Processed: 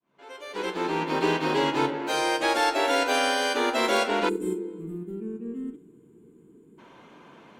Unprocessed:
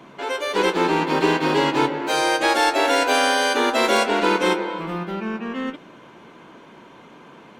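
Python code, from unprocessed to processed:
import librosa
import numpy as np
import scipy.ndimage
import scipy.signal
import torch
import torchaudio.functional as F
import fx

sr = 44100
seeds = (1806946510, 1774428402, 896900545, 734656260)

y = fx.fade_in_head(x, sr, length_s=1.25)
y = fx.doubler(y, sr, ms=43.0, db=-13.0)
y = fx.spec_box(y, sr, start_s=4.29, length_s=2.5, low_hz=480.0, high_hz=6900.0, gain_db=-25)
y = y * 10.0 ** (-5.5 / 20.0)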